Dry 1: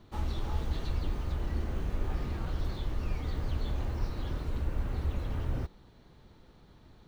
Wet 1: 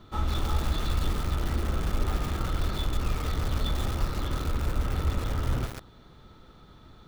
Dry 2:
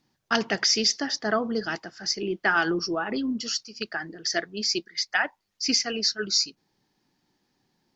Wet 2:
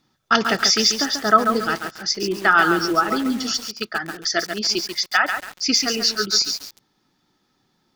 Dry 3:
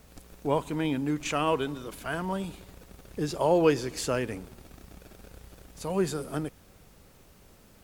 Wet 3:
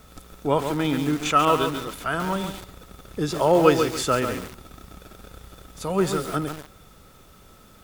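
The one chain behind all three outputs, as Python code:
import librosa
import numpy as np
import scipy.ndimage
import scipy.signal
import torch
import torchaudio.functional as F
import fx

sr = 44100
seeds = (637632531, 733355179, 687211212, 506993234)

y = fx.small_body(x, sr, hz=(1300.0, 3500.0), ring_ms=40, db=14)
y = fx.echo_crushed(y, sr, ms=139, feedback_pct=35, bits=6, wet_db=-6)
y = y * 10.0 ** (4.5 / 20.0)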